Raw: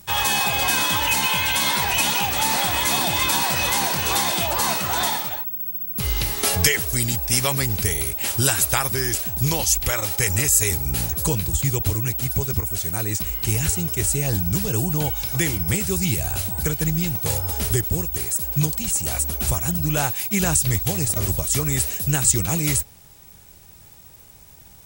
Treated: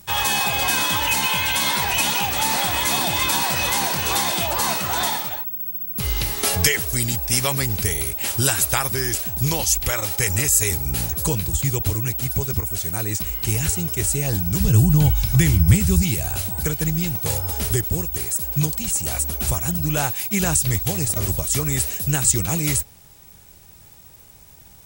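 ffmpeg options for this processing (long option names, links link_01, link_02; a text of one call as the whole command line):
ffmpeg -i in.wav -filter_complex "[0:a]asplit=3[link_01][link_02][link_03];[link_01]afade=type=out:start_time=14.59:duration=0.02[link_04];[link_02]asubboost=boost=4.5:cutoff=190,afade=type=in:start_time=14.59:duration=0.02,afade=type=out:start_time=16.01:duration=0.02[link_05];[link_03]afade=type=in:start_time=16.01:duration=0.02[link_06];[link_04][link_05][link_06]amix=inputs=3:normalize=0" out.wav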